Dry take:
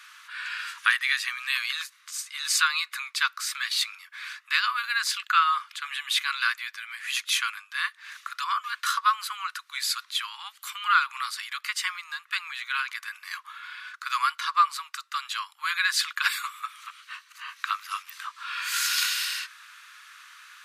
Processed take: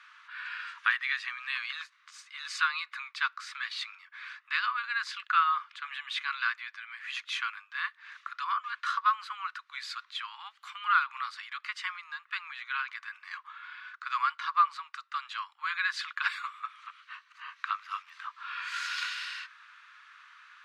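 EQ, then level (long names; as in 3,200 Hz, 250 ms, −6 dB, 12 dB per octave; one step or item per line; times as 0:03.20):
head-to-tape spacing loss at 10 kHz 27 dB
0.0 dB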